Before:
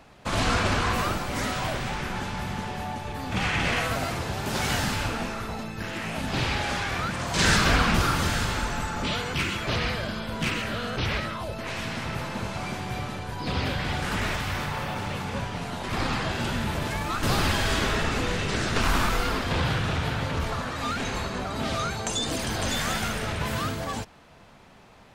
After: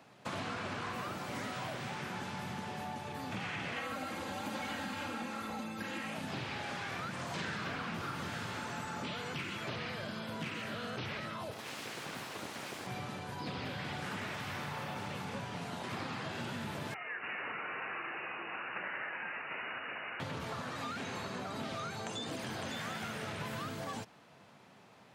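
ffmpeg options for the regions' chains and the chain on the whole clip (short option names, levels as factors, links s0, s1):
-filter_complex "[0:a]asettb=1/sr,asplit=3[s0][s1][s2];[s0]atrim=end=3.764[s3];[s1]atrim=start=3.76:end=6.14,asetpts=PTS-STARTPTS,afade=t=in:d=0.004:c=qsin,afade=t=out:st=2.376:d=0.004:c=qsin,bandreject=f=5400:w=11,aecho=1:1:3.7:0.94,atrim=end_sample=104958[s4];[s2]atrim=start=6.136[s5];[s3][s4]acrossfade=d=0.004:c1=hsin:c2=qsin[s6];[s6][s5]acrossfade=d=0.004:c1=qsin:c2=hsin,asettb=1/sr,asplit=3[s7][s8][s9];[s7]atrim=end=11.514[s10];[s8]atrim=start=11.51:end=12.87,asetpts=PTS-STARTPTS,afade=t=in:d=0.004:c=qsin,afade=t=out:st=1.356:d=0.004:c=qsin,highshelf=f=7500:g=7,aeval=exprs='abs(val(0))':c=same[s11];[s9]atrim=start=12.866[s12];[s10][s11]acrossfade=d=0.004:c1=hsin:c2=qsin[s13];[s13][s12]acrossfade=d=0.004:c1=qsin:c2=hsin,asettb=1/sr,asplit=3[s14][s15][s16];[s14]atrim=end=16.944[s17];[s15]atrim=start=16.94:end=20.2,asetpts=PTS-STARTPTS,afade=t=in:d=0.004:c=qsin,afade=t=out:st=3.256:d=0.004:c=qsin,highpass=f=1100:p=1,lowpass=f=2600:t=q:w=0.5098,lowpass=f=2600:t=q:w=0.6013,lowpass=f=2600:t=q:w=0.9,lowpass=f=2600:t=q:w=2.563,afreqshift=-3000[s18];[s16]atrim=start=20.196[s19];[s17][s18]acrossfade=d=0.004:c1=hsin:c2=qsin[s20];[s20][s19]acrossfade=d=0.004:c1=qsin:c2=hsin,acrossover=split=3700[s21][s22];[s22]acompressor=threshold=0.01:ratio=4:attack=1:release=60[s23];[s21][s23]amix=inputs=2:normalize=0,highpass=f=110:w=0.5412,highpass=f=110:w=1.3066,acompressor=threshold=0.0316:ratio=6,volume=0.473"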